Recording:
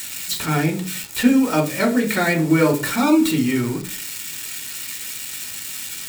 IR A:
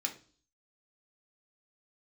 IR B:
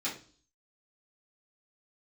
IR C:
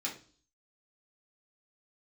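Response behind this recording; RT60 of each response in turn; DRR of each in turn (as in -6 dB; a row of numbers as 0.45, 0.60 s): A; 0.40, 0.40, 0.40 s; 1.5, -9.0, -4.5 dB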